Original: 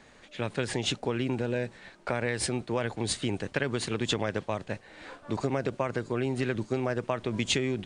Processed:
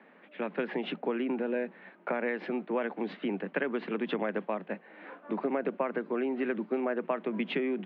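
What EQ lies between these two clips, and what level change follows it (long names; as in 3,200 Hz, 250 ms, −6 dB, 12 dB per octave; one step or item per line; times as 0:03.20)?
Butterworth high-pass 170 Hz 96 dB per octave
low-pass filter 2,700 Hz 24 dB per octave
high-frequency loss of the air 190 metres
0.0 dB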